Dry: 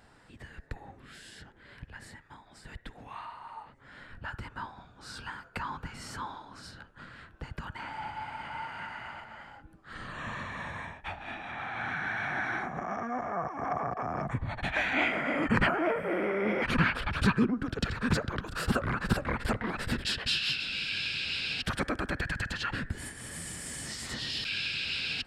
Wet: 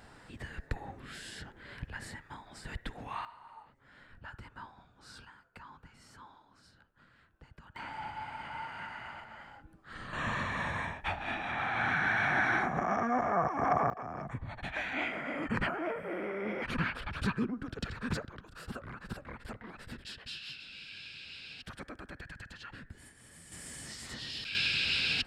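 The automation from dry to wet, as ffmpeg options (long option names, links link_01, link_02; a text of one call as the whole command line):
ffmpeg -i in.wav -af "asetnsamples=nb_out_samples=441:pad=0,asendcmd='3.25 volume volume -8dB;5.25 volume volume -15dB;7.76 volume volume -2.5dB;10.13 volume volume 4dB;13.9 volume volume -7dB;18.25 volume volume -14dB;23.52 volume volume -6dB;24.55 volume volume 3dB',volume=4dB" out.wav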